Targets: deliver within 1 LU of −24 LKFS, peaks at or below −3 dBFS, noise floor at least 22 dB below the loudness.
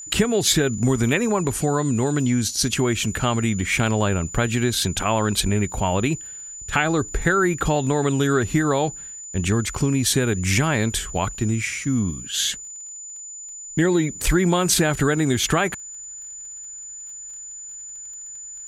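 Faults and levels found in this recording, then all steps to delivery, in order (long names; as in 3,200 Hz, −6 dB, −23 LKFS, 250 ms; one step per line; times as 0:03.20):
crackle rate 24 per second; interfering tone 7,000 Hz; level of the tone −34 dBFS; integrated loudness −21.5 LKFS; sample peak −5.5 dBFS; target loudness −24.0 LKFS
→ click removal
notch filter 7,000 Hz, Q 30
level −2.5 dB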